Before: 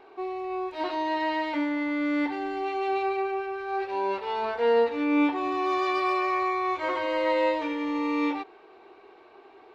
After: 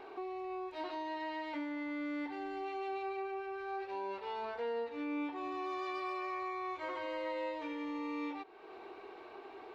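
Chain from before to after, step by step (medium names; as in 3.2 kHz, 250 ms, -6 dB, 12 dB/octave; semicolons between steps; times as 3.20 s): compression 2.5:1, threshold -47 dBFS, peak gain reduction 18.5 dB; trim +2 dB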